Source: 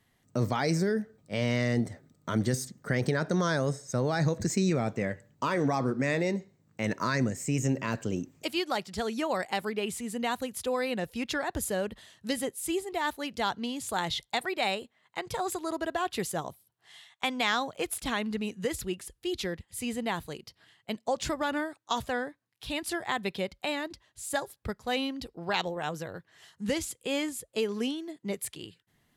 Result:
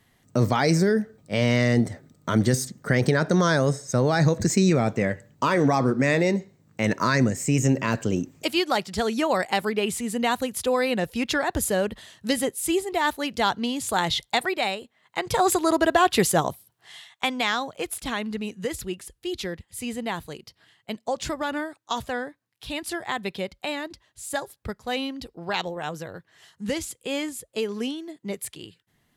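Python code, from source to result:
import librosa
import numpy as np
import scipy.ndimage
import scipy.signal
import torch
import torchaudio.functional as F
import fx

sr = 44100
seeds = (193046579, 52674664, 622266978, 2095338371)

y = fx.gain(x, sr, db=fx.line((14.47, 7.0), (14.77, 0.5), (15.46, 12.0), (16.49, 12.0), (17.57, 2.0)))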